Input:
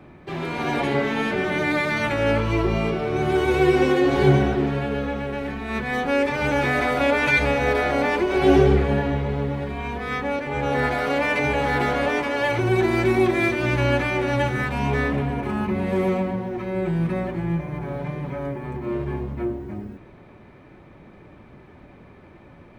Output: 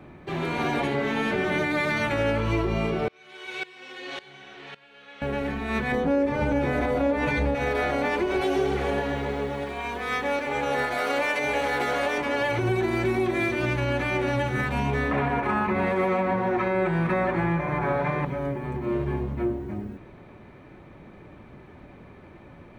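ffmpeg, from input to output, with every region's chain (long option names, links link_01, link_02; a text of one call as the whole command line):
ffmpeg -i in.wav -filter_complex "[0:a]asettb=1/sr,asplit=3[link_01][link_02][link_03];[link_01]atrim=end=3.084[link_04];[link_02]atrim=start=3.08:end=5.22,asetpts=PTS-STARTPTS,afade=type=in:duration=0.004:curve=qsin,afade=type=out:start_time=2.136:duration=0.004:curve=qsin,bandpass=frequency=3500:width_type=q:width=1,asplit=2[link_05][link_06];[link_06]adelay=49,volume=-6dB[link_07];[link_05][link_07]amix=inputs=2:normalize=0,atrim=end_sample=94374,aeval=exprs='val(0)*pow(10,-20*if(lt(mod(-1.8*n/s,1),2*abs(-1.8)/1000),1-mod(-1.8*n/s,1)/(2*abs(-1.8)/1000),(mod(-1.8*n/s,1)-2*abs(-1.8)/1000)/(1-2*abs(-1.8)/1000))/20)':channel_layout=same[link_08];[link_03]atrim=start=5.216[link_09];[link_04][link_08]acrossfade=duration=0.004:curve1=hsin:curve2=qsin[link_10];[link_10][link_09]acrossfade=duration=0.004:curve1=qsin:curve2=hsin,asettb=1/sr,asplit=3[link_11][link_12][link_13];[link_11]atrim=end=5.924[link_14];[link_12]atrim=start=5.92:end=7.55,asetpts=PTS-STARTPTS,afade=type=in:duration=0.004:curve=qsin,afade=type=out:start_time=1.626:duration=0.004:curve=qsin,tiltshelf=frequency=840:gain=7,asplit=2[link_15][link_16];[link_16]adelay=18,volume=-7dB[link_17];[link_15][link_17]amix=inputs=2:normalize=0,atrim=end_sample=71883[link_18];[link_13]atrim=start=7.546[link_19];[link_14][link_18]acrossfade=duration=0.004:curve1=hsin:curve2=qsin[link_20];[link_20][link_19]acrossfade=duration=0.004:curve1=qsin:curve2=hsin,asettb=1/sr,asplit=3[link_21][link_22][link_23];[link_21]atrim=end=8.414[link_24];[link_22]atrim=start=8.41:end=12.18,asetpts=PTS-STARTPTS,afade=type=in:duration=0.004:curve=qsin,afade=type=out:start_time=3.766:duration=0.004:curve=qsin,bass=frequency=250:gain=-12,treble=frequency=4000:gain=5,aecho=1:1:130|260|390|520|650|780|910:0.237|0.14|0.0825|0.0487|0.0287|0.017|0.01,atrim=end_sample=166257[link_25];[link_23]atrim=start=12.176[link_26];[link_24][link_25]acrossfade=duration=0.004:curve1=hsin:curve2=qsin[link_27];[link_27][link_26]acrossfade=duration=0.004:curve1=qsin:curve2=hsin,asettb=1/sr,asplit=3[link_28][link_29][link_30];[link_28]atrim=end=15.114[link_31];[link_29]atrim=start=15.11:end=18.25,asetpts=PTS-STARTPTS,afade=type=in:duration=0.004:curve=qsin,afade=type=out:start_time=3.136:duration=0.004:curve=qsin,equalizer=frequency=1300:width_type=o:width=2.9:gain=13.5,bandreject=frequency=3000:width=16[link_32];[link_30]atrim=start=18.246[link_33];[link_31][link_32]acrossfade=duration=0.004:curve1=hsin:curve2=qsin[link_34];[link_34][link_33]acrossfade=duration=0.004:curve1=qsin:curve2=hsin,bandreject=frequency=5000:width=18,alimiter=limit=-16dB:level=0:latency=1:release=201" out.wav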